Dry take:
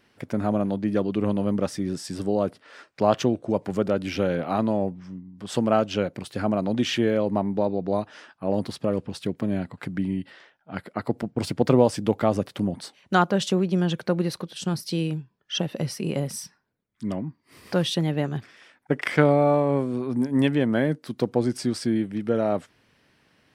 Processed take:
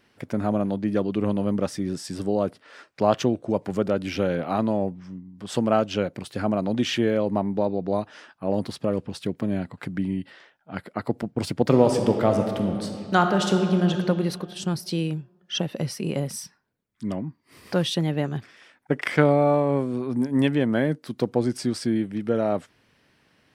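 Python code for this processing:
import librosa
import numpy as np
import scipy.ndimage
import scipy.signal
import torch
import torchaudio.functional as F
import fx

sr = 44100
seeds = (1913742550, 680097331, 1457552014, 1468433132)

y = fx.reverb_throw(x, sr, start_s=11.62, length_s=2.3, rt60_s=2.3, drr_db=4.5)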